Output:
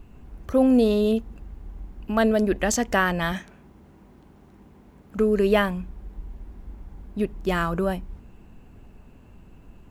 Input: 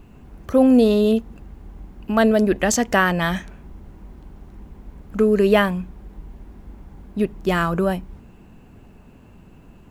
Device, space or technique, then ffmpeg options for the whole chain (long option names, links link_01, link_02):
low shelf boost with a cut just above: -filter_complex "[0:a]lowshelf=frequency=65:gain=7.5,equalizer=frequency=160:width_type=o:width=0.92:gain=-2,asettb=1/sr,asplit=3[link_01][link_02][link_03];[link_01]atrim=end=3.324[link_04];[link_02]atrim=start=3.32:end=5.18,asetpts=PTS-STARTPTS,afade=type=in:duration=0.004:curve=qsin,afade=type=out:start_time=1.856:duration=0.004:curve=qsin,highpass=130[link_05];[link_03]atrim=start=5.176[link_06];[link_04][link_05]acrossfade=duration=0.004:curve1=hsin:curve2=qsin[link_07];[link_07][link_06]acrossfade=duration=0.004:curve1=qsin:curve2=hsin,volume=-4dB"